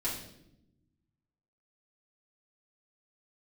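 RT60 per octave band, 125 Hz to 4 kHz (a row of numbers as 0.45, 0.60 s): 1.8, 1.5, 1.0, 0.65, 0.65, 0.65 s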